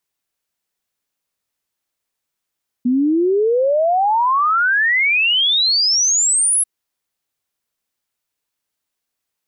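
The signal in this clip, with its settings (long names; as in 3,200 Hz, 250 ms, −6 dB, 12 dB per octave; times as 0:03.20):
exponential sine sweep 240 Hz → 11,000 Hz 3.79 s −12.5 dBFS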